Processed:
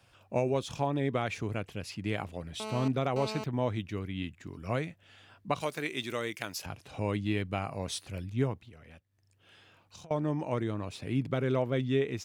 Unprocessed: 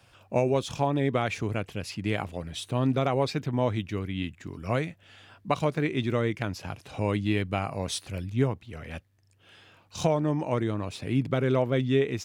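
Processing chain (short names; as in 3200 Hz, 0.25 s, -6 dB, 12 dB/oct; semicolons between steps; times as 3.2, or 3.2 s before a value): 2.6–3.44 GSM buzz -34 dBFS; 5.61–6.66 RIAA curve recording; 8.68–10.11 compressor 12:1, threshold -45 dBFS, peak gain reduction 25.5 dB; gain -4.5 dB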